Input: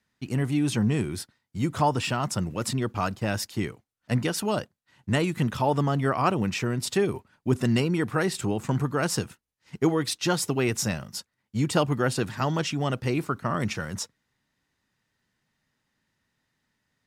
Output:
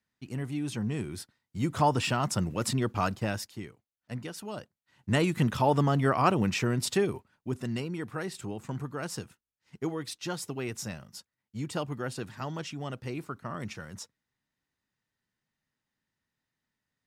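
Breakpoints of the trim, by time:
0.79 s -8.5 dB
1.92 s -1 dB
3.18 s -1 dB
3.64 s -12.5 dB
4.51 s -12.5 dB
5.22 s -0.5 dB
6.85 s -0.5 dB
7.56 s -10 dB

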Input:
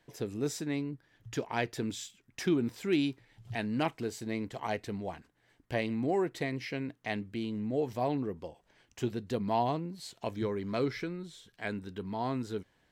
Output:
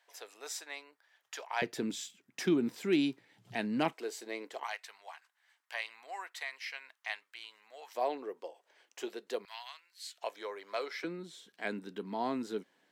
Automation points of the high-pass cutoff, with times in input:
high-pass 24 dB/octave
670 Hz
from 1.62 s 170 Hz
from 3.93 s 390 Hz
from 4.64 s 920 Hz
from 7.95 s 410 Hz
from 9.45 s 1.5 kHz
from 10.18 s 540 Hz
from 11.04 s 210 Hz

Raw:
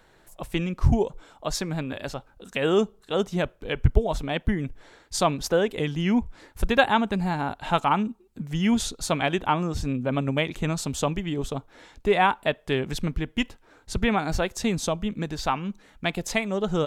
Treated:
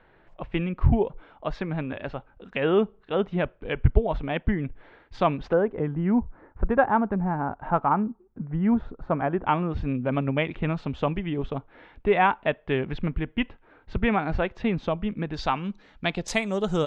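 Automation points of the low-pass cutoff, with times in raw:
low-pass 24 dB/octave
2.8 kHz
from 5.53 s 1.5 kHz
from 9.46 s 2.8 kHz
from 15.34 s 4.9 kHz
from 16.28 s 10 kHz

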